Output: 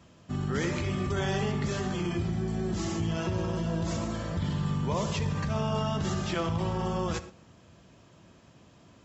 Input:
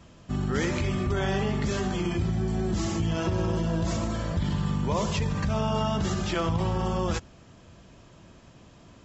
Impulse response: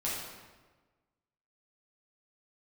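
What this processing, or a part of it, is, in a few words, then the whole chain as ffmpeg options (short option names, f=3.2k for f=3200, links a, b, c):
keyed gated reverb: -filter_complex "[0:a]highpass=72,asplit=3[a][b][c];[1:a]atrim=start_sample=2205[d];[b][d]afir=irnorm=-1:irlink=0[e];[c]apad=whole_len=398794[f];[e][f]sidechaingate=range=-12dB:threshold=-42dB:ratio=16:detection=peak,volume=-15dB[g];[a][g]amix=inputs=2:normalize=0,asettb=1/sr,asplit=3[h][i][j];[h]atrim=end=1.044[k];[i]atrim=start=1.04:end=1.52,asetpts=PTS-STARTPTS,afade=t=in:d=0.004:c=qsin,afade=t=out:st=0.476:d=0.004:c=qsin,highshelf=f=5.9k:g=8.5[l];[j]atrim=start=1.516[m];[k][l]acrossfade=d=0.004:c1=hsin:c2=qsin[n];[n][m]acrossfade=d=0.004:c1=qsin:c2=hsin,volume=-4dB"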